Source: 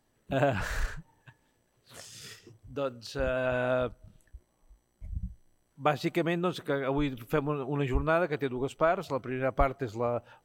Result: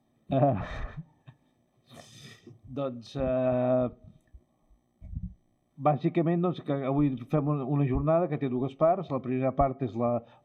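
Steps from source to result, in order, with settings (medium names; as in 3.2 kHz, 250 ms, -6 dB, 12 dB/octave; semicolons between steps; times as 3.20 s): low-pass that closes with the level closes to 1.4 kHz, closed at -23.5 dBFS; reverberation RT60 0.45 s, pre-delay 3 ms, DRR 16.5 dB; trim -8.5 dB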